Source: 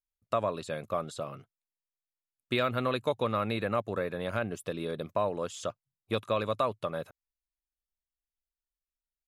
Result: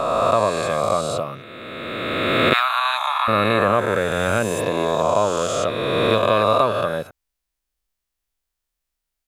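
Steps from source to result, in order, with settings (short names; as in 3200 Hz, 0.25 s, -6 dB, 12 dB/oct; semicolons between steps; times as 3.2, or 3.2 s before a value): spectral swells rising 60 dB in 2.59 s; 2.53–3.28 steep high-pass 700 Hz 96 dB/oct; gain +8.5 dB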